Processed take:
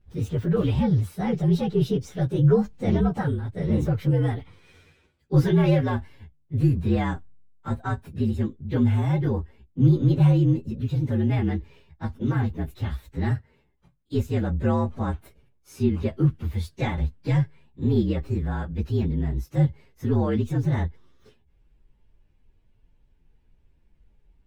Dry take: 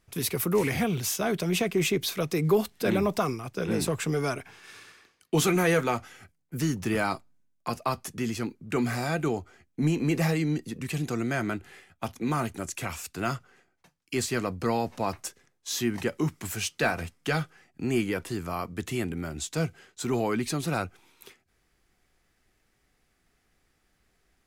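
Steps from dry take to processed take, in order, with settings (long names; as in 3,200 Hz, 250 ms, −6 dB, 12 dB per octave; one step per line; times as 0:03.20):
partials spread apart or drawn together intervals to 117%
RIAA equalisation playback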